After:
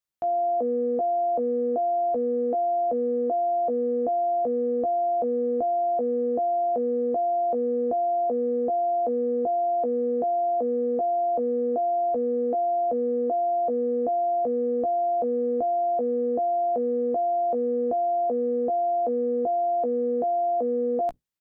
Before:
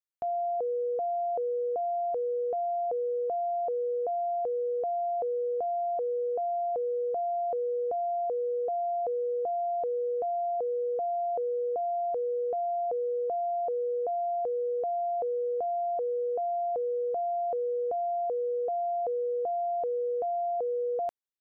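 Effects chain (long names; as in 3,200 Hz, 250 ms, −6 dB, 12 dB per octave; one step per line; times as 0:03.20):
sub-octave generator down 1 octave, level +1 dB
double-tracking delay 16 ms −8 dB
level +3.5 dB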